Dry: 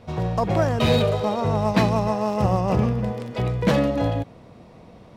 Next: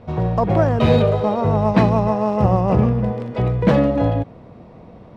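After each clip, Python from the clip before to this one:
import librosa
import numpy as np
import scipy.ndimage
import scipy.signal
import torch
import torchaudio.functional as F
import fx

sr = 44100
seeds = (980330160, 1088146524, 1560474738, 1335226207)

y = fx.lowpass(x, sr, hz=1400.0, slope=6)
y = y * 10.0 ** (5.0 / 20.0)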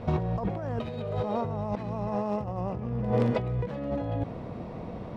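y = fx.over_compress(x, sr, threshold_db=-26.0, ratio=-1.0)
y = y * 10.0 ** (-4.5 / 20.0)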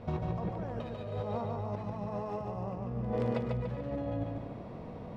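y = fx.echo_feedback(x, sr, ms=145, feedback_pct=47, wet_db=-3.5)
y = y * 10.0 ** (-7.5 / 20.0)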